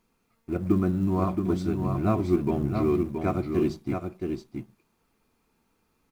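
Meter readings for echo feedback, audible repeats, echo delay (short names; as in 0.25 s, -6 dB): no steady repeat, 1, 0.673 s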